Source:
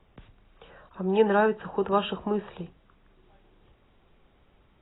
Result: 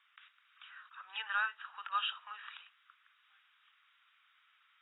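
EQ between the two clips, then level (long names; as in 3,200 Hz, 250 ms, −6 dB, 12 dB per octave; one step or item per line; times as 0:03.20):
elliptic high-pass filter 1,300 Hz, stop band 80 dB
dynamic equaliser 1,800 Hz, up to −6 dB, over −49 dBFS, Q 0.9
high-frequency loss of the air 83 metres
+4.0 dB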